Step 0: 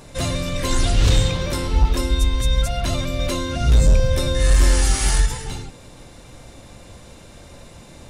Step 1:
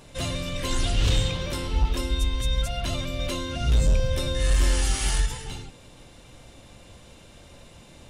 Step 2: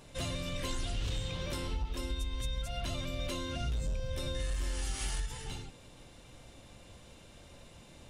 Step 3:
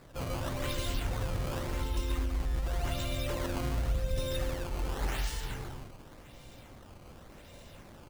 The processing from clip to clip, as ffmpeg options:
-af "equalizer=f=3k:w=2.8:g=6,volume=-6.5dB"
-af "acompressor=threshold=-26dB:ratio=6,volume=-5.5dB"
-af "aecho=1:1:139.9|262.4:0.794|0.501,acrusher=samples=14:mix=1:aa=0.000001:lfo=1:lforange=22.4:lforate=0.89"

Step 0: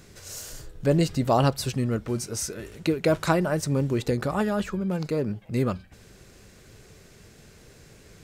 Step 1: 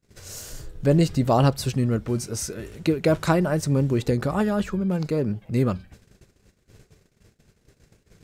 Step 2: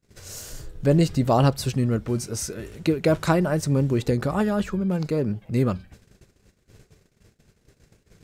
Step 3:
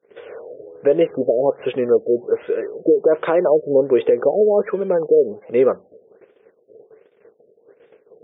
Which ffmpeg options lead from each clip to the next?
-af "agate=range=-32dB:threshold=-48dB:ratio=16:detection=peak,lowshelf=f=360:g=4.5"
-af anull
-af "highpass=f=460:t=q:w=4.8,alimiter=limit=-11.5dB:level=0:latency=1:release=185,afftfilt=real='re*lt(b*sr/1024,670*pow(3700/670,0.5+0.5*sin(2*PI*1.3*pts/sr)))':imag='im*lt(b*sr/1024,670*pow(3700/670,0.5+0.5*sin(2*PI*1.3*pts/sr)))':win_size=1024:overlap=0.75,volume=5.5dB"

